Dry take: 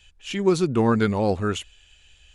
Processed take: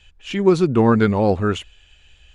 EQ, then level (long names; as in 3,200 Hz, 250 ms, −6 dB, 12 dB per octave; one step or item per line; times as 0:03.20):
low-pass filter 2,700 Hz 6 dB per octave
+5.0 dB